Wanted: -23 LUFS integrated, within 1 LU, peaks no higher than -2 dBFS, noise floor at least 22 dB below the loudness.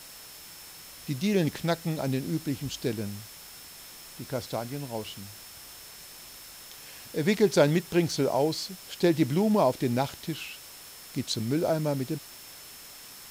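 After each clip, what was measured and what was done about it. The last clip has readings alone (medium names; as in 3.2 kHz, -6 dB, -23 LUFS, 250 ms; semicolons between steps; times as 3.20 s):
steady tone 5.3 kHz; tone level -52 dBFS; noise floor -47 dBFS; noise floor target -51 dBFS; loudness -28.5 LUFS; peak level -10.5 dBFS; loudness target -23.0 LUFS
-> band-stop 5.3 kHz, Q 30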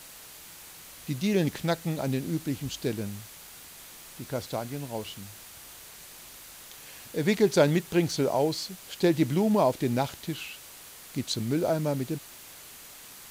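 steady tone not found; noise floor -48 dBFS; noise floor target -51 dBFS
-> noise print and reduce 6 dB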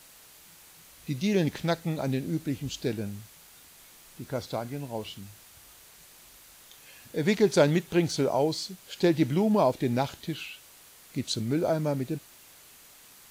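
noise floor -54 dBFS; loudness -28.5 LUFS; peak level -10.5 dBFS; loudness target -23.0 LUFS
-> trim +5.5 dB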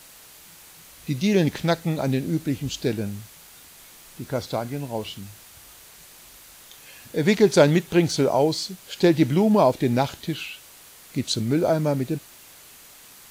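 loudness -23.0 LUFS; peak level -5.0 dBFS; noise floor -48 dBFS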